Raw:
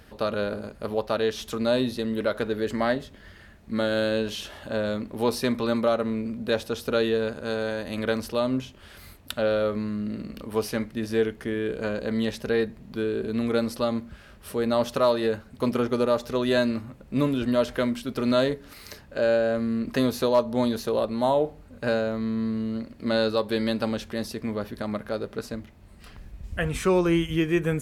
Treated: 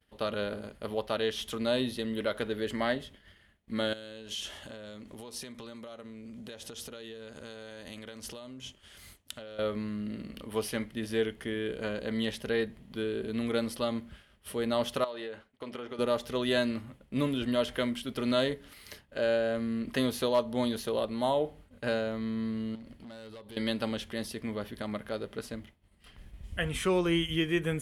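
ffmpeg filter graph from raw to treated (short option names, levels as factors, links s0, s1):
-filter_complex "[0:a]asettb=1/sr,asplit=3[s0][s1][s2];[s0]atrim=end=3.934[s3];[s1]atrim=start=3.93:end=9.59,asetpts=PTS-STARTPTS,afade=t=in:d=0.004:c=qsin,afade=t=out:st=5.656:d=0.004:c=qsin,acompressor=threshold=0.0178:ratio=20:attack=3.2:release=140:knee=1:detection=peak,equalizer=f=6700:w=1.5:g=10[s4];[s2]atrim=start=9.586[s5];[s3][s4]acrossfade=d=0.004:c1=hsin:c2=qsin[s6];[s6][s5]acrossfade=d=0.004:c1=qsin:c2=hsin,asettb=1/sr,asplit=3[s7][s8][s9];[s7]atrim=end=15.044[s10];[s8]atrim=start=15.04:end=15.99,asetpts=PTS-STARTPTS,afade=t=in:d=0.004:c=qsin,afade=t=out:st=0.946:d=0.004:c=qsin,lowpass=9500,bass=f=250:g=-11,treble=f=4000:g=-6,acompressor=threshold=0.0282:ratio=4:attack=3.2:release=140:knee=1:detection=peak[s11];[s9]atrim=start=15.986[s12];[s10][s11]acrossfade=d=0.004:c1=hsin:c2=qsin[s13];[s13][s12]acrossfade=d=0.004:c1=qsin:c2=hsin,asettb=1/sr,asplit=3[s14][s15][s16];[s14]atrim=end=22.754[s17];[s15]atrim=start=22.75:end=23.57,asetpts=PTS-STARTPTS,afade=t=in:d=0.004:c=qsin,afade=t=out:st=0.816:d=0.004:c=qsin,acompressor=threshold=0.0141:ratio=8:attack=3.2:release=140:knee=1:detection=peak,lowshelf=f=150:g=7,asoftclip=type=hard:threshold=0.015[s18];[s16]atrim=start=23.566[s19];[s17][s18]acrossfade=d=0.004:c1=hsin:c2=qsin[s20];[s20][s19]acrossfade=d=0.004:c1=qsin:c2=hsin,agate=range=0.0224:threshold=0.00891:ratio=3:detection=peak,equalizer=f=2000:t=o:w=0.33:g=5,equalizer=f=3150:t=o:w=0.33:g=10,equalizer=f=10000:t=o:w=0.33:g=8,volume=0.501"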